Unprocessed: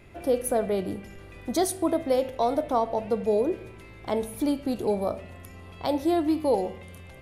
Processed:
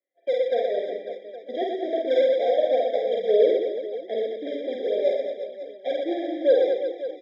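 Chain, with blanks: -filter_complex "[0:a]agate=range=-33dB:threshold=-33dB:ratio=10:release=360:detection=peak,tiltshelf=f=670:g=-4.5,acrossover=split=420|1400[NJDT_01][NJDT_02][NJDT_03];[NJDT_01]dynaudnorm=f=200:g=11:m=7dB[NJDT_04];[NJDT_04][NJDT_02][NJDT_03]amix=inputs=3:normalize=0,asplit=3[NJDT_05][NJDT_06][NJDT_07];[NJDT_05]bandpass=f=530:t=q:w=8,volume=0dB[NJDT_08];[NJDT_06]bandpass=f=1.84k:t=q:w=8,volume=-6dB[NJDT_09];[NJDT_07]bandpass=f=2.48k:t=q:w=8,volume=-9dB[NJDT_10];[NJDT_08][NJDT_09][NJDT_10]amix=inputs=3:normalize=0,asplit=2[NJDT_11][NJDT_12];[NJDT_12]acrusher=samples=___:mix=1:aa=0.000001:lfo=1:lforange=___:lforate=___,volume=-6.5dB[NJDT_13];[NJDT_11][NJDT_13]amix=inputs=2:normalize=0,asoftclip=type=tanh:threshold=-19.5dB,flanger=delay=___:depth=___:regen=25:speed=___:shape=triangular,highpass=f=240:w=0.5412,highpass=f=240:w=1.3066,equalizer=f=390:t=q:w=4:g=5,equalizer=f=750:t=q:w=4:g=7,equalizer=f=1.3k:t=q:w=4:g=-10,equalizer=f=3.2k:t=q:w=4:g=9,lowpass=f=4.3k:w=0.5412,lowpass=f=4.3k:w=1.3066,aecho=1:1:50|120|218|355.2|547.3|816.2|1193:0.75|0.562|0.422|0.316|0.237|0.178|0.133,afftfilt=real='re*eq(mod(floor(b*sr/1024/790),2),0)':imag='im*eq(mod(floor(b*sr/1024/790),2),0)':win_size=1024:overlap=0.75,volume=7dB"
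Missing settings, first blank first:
20, 20, 3.8, 3.1, 2.5, 1.4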